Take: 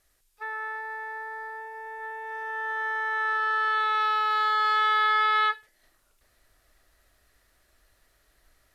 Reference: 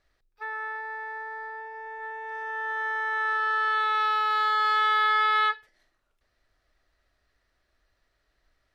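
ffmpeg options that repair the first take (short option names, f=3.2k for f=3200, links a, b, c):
-af "agate=range=-21dB:threshold=-58dB,asetnsamples=n=441:p=0,asendcmd='5.83 volume volume -6.5dB',volume=0dB"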